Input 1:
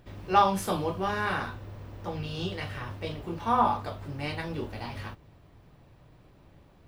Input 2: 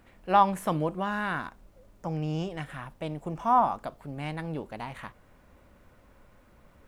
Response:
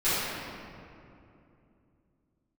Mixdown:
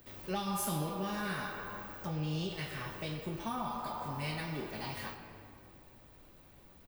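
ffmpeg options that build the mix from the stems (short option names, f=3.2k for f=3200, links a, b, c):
-filter_complex "[0:a]aemphasis=mode=production:type=bsi,volume=-4dB,asplit=2[a][b];[b]volume=-19.5dB[c];[1:a]equalizer=f=1k:w=0.85:g=-13,adelay=0.9,volume=-4dB,asplit=2[d][e];[e]apad=whole_len=303078[f];[a][f]sidechaincompress=threshold=-41dB:ratio=8:attack=39:release=677[g];[2:a]atrim=start_sample=2205[h];[c][h]afir=irnorm=-1:irlink=0[i];[g][d][i]amix=inputs=3:normalize=0,acrossover=split=240|3000[j][k][l];[k]acompressor=threshold=-36dB:ratio=6[m];[j][m][l]amix=inputs=3:normalize=0"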